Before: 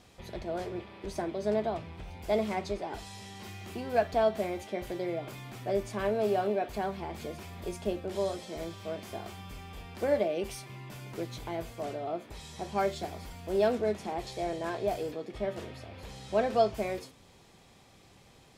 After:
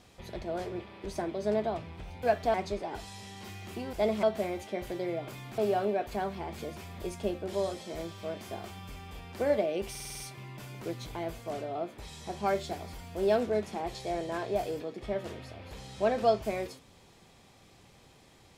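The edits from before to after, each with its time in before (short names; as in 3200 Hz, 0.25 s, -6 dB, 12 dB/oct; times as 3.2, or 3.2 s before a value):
2.23–2.53 swap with 3.92–4.23
5.58–6.2 cut
10.52 stutter 0.05 s, 7 plays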